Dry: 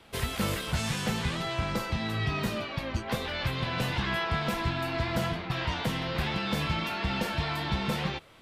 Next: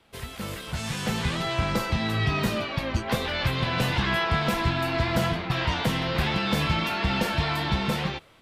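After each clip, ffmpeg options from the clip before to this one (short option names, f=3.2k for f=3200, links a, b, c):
-af "dynaudnorm=f=400:g=5:m=11dB,volume=-6dB"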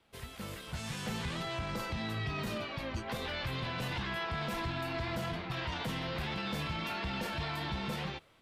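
-af "alimiter=limit=-20dB:level=0:latency=1:release=18,volume=-8.5dB"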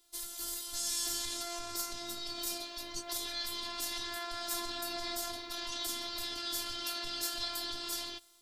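-af "aexciter=amount=7.3:drive=6.7:freq=3.8k,afftfilt=real='hypot(re,im)*cos(PI*b)':imag='0':win_size=512:overlap=0.75,volume=-2.5dB"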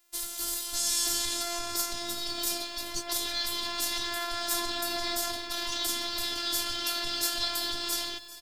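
-af "aeval=exprs='sgn(val(0))*max(abs(val(0))-0.00106,0)':c=same,aecho=1:1:393|786|1179|1572:0.15|0.0748|0.0374|0.0187,volume=7dB"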